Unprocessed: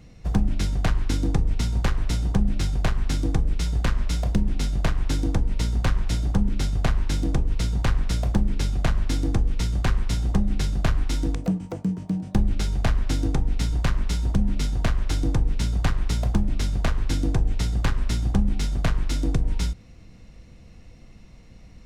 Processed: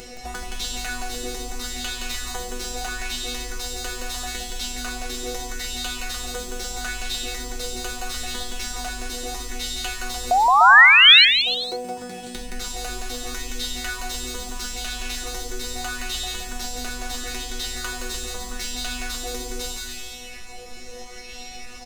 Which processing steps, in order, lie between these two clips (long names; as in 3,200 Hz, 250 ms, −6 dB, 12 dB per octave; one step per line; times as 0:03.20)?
stylus tracing distortion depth 0.044 ms
brickwall limiter −19.5 dBFS, peak gain reduction 11 dB
bass and treble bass −8 dB, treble +9 dB
notch filter 1,100 Hz, Q 17
resonators tuned to a chord B3 fifth, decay 0.73 s
sound drawn into the spectrogram rise, 0:10.31–0:11.25, 700–4,400 Hz −25 dBFS
upward compression, threshold −26 dBFS
parametric band 230 Hz −5.5 dB 2 octaves
on a send: bouncing-ball delay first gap 170 ms, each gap 0.75×, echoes 5
on the sum: auto-filter bell 0.77 Hz 400–3,500 Hz +8 dB
level +8.5 dB